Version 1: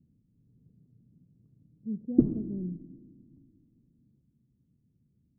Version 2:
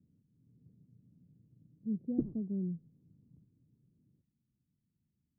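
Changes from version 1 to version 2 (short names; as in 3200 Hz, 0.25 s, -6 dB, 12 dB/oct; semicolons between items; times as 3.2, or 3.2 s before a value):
background -9.5 dB; reverb: off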